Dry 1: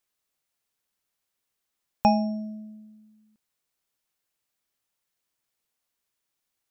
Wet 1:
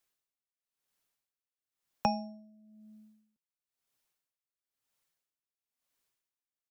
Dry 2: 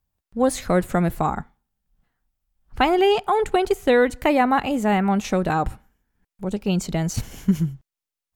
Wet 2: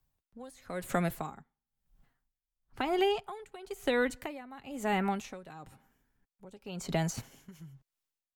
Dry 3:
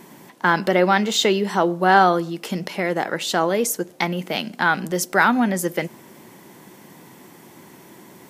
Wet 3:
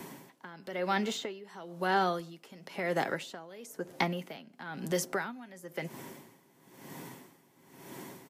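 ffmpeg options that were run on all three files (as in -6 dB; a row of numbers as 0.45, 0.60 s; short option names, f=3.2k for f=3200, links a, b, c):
-filter_complex "[0:a]aecho=1:1:7.4:0.3,acrossover=split=120|530|2000[a][b][c][d];[a]acompressor=threshold=-49dB:ratio=4[e];[b]acompressor=threshold=-32dB:ratio=4[f];[c]acompressor=threshold=-32dB:ratio=4[g];[d]acompressor=threshold=-37dB:ratio=4[h];[e][f][g][h]amix=inputs=4:normalize=0,aeval=exprs='val(0)*pow(10,-20*(0.5-0.5*cos(2*PI*1*n/s))/20)':c=same"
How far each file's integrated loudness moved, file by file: -9.0, -12.0, -14.5 LU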